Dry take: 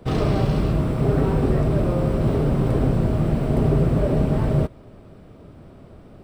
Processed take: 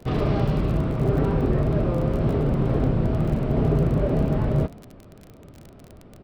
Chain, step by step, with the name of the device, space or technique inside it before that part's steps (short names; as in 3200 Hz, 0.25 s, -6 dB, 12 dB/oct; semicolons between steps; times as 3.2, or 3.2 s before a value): frequency-shifting echo 90 ms, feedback 60%, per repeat +34 Hz, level -24 dB; lo-fi chain (LPF 4000 Hz 12 dB/oct; wow and flutter; crackle 30/s -29 dBFS); gain -2 dB